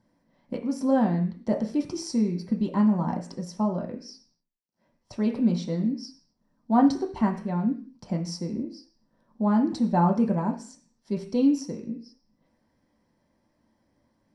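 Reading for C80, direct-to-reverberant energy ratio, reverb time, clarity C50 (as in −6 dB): 15.5 dB, 1.5 dB, 0.45 s, 11.0 dB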